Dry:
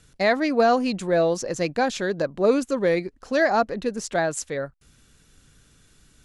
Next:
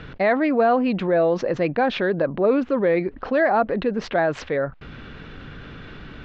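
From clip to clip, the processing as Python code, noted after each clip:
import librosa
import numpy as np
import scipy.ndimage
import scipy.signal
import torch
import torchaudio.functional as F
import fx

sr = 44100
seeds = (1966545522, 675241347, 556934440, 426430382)

y = scipy.signal.sosfilt(scipy.signal.bessel(6, 2100.0, 'lowpass', norm='mag', fs=sr, output='sos'), x)
y = fx.low_shelf(y, sr, hz=130.0, db=-8.5)
y = fx.env_flatten(y, sr, amount_pct=50)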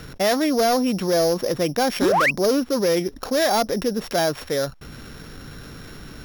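y = np.r_[np.sort(x[:len(x) // 8 * 8].reshape(-1, 8), axis=1).ravel(), x[len(x) // 8 * 8:]]
y = fx.spec_paint(y, sr, seeds[0], shape='rise', start_s=2.01, length_s=0.3, low_hz=230.0, high_hz=2800.0, level_db=-17.0)
y = np.clip(y, -10.0 ** (-14.5 / 20.0), 10.0 ** (-14.5 / 20.0))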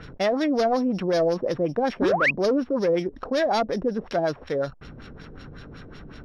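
y = fx.filter_lfo_lowpass(x, sr, shape='sine', hz=5.4, low_hz=460.0, high_hz=4500.0, q=1.2)
y = y * 10.0 ** (-3.0 / 20.0)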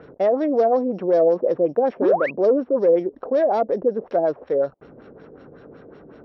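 y = fx.bandpass_q(x, sr, hz=500.0, q=1.5)
y = y * 10.0 ** (6.5 / 20.0)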